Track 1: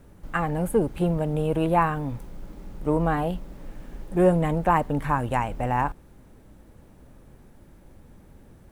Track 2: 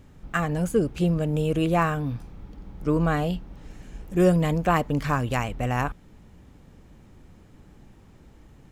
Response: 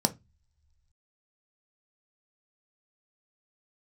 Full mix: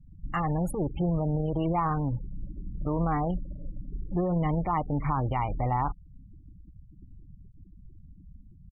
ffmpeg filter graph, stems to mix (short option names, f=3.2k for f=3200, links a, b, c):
-filter_complex "[0:a]equalizer=f=3.1k:w=1.1:g=-6.5,alimiter=limit=-20dB:level=0:latency=1:release=24,adynamicequalizer=threshold=0.00562:dfrequency=1800:dqfactor=0.7:tfrequency=1800:tqfactor=0.7:attack=5:release=100:ratio=0.375:range=2:mode=cutabove:tftype=highshelf,volume=0.5dB[a];[1:a]adynamicequalizer=threshold=0.0141:dfrequency=240:dqfactor=1.5:tfrequency=240:tqfactor=1.5:attack=5:release=100:ratio=0.375:range=2.5:mode=cutabove:tftype=bell,acompressor=threshold=-30dB:ratio=4,volume=23.5dB,asoftclip=hard,volume=-23.5dB,adelay=0.8,volume=-3dB[b];[a][b]amix=inputs=2:normalize=0,afftfilt=real='re*gte(hypot(re,im),0.0178)':imag='im*gte(hypot(re,im),0.0178)':win_size=1024:overlap=0.75,equalizer=f=230:w=5.9:g=-8"